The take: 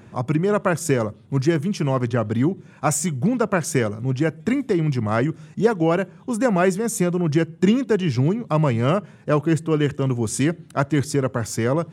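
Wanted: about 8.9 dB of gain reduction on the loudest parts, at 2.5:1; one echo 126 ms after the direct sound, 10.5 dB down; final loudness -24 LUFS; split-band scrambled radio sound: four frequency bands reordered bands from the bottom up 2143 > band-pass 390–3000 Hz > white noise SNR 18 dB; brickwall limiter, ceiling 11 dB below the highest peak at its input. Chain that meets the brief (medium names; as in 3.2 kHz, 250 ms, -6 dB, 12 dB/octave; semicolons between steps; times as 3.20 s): compression 2.5:1, threshold -26 dBFS; peak limiter -22 dBFS; delay 126 ms -10.5 dB; four frequency bands reordered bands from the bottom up 2143; band-pass 390–3000 Hz; white noise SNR 18 dB; trim +5.5 dB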